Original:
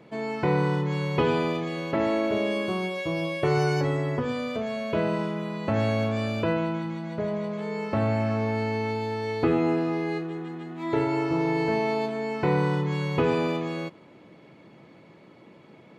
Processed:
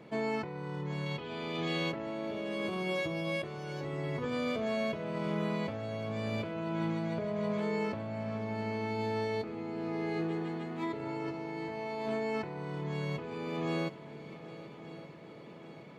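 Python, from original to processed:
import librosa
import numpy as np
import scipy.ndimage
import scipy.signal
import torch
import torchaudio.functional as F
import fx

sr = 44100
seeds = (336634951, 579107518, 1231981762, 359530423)

y = fx.peak_eq(x, sr, hz=3500.0, db=8.5, octaves=1.1, at=(1.06, 1.9))
y = fx.over_compress(y, sr, threshold_db=-31.0, ratio=-1.0)
y = fx.echo_heads(y, sr, ms=391, heads='second and third', feedback_pct=62, wet_db=-17.0)
y = F.gain(torch.from_numpy(y), -5.0).numpy()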